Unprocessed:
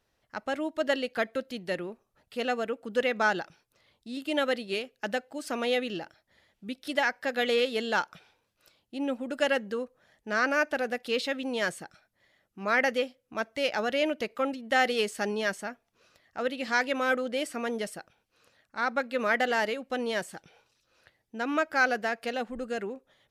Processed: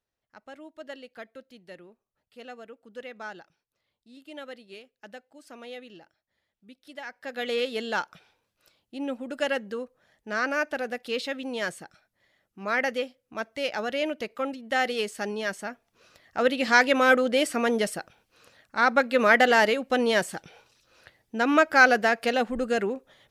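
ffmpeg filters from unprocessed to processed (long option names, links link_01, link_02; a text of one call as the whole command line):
ffmpeg -i in.wav -af "volume=7.5dB,afade=type=in:start_time=7.03:duration=0.63:silence=0.237137,afade=type=in:start_time=15.46:duration=0.99:silence=0.375837" out.wav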